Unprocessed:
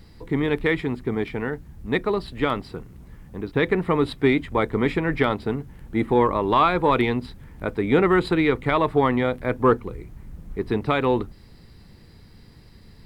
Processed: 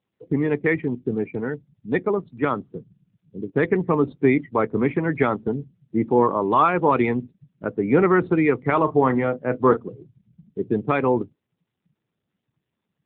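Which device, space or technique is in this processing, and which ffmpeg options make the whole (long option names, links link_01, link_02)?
mobile call with aggressive noise cancelling: -filter_complex "[0:a]asettb=1/sr,asplit=3[link_01][link_02][link_03];[link_01]atrim=end=8.664[link_04];[link_02]atrim=start=8.66:end=9.89,asetpts=PTS-STARTPTS,afade=type=in:duration=0.004:curve=qsin,afade=type=out:start_time=1.226:duration=0.004:curve=qsin,asplit=2[link_05][link_06];[link_06]adelay=38,volume=-12dB[link_07];[link_05][link_07]amix=inputs=2:normalize=0,atrim=end_sample=54243[link_08];[link_03]atrim=start=9.886[link_09];[link_04][link_08]acrossfade=duration=0.004:curve1=hsin:curve2=qsin[link_10];[link_10][link_09]acrossfade=duration=0.004:curve1=qsin:curve2=hsin,highpass=frequency=110:width=0.5412,highpass=frequency=110:width=1.3066,afftdn=noise_reduction=35:noise_floor=-30,volume=1.5dB" -ar 8000 -c:a libopencore_amrnb -b:a 7950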